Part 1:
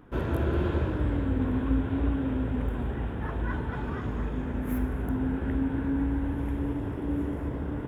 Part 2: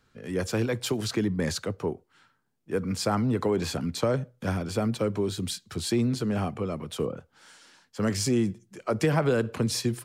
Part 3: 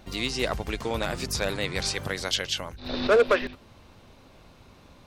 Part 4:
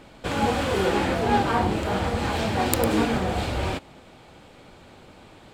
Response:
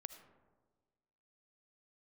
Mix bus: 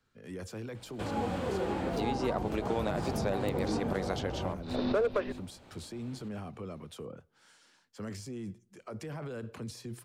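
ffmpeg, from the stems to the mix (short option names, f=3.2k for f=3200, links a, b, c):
-filter_complex "[1:a]alimiter=limit=-24dB:level=0:latency=1:release=22,volume=-9.5dB,asplit=2[a][b];[b]volume=-20.5dB[c];[2:a]agate=range=-33dB:threshold=-39dB:ratio=3:detection=peak,adelay=1850,volume=2dB[d];[3:a]adelay=750,volume=-8dB[e];[4:a]atrim=start_sample=2205[f];[c][f]afir=irnorm=-1:irlink=0[g];[a][d][e][g]amix=inputs=4:normalize=0,acrossover=split=96|1100[h][i][j];[h]acompressor=threshold=-46dB:ratio=4[k];[i]acompressor=threshold=-28dB:ratio=4[l];[j]acompressor=threshold=-47dB:ratio=4[m];[k][l][m]amix=inputs=3:normalize=0"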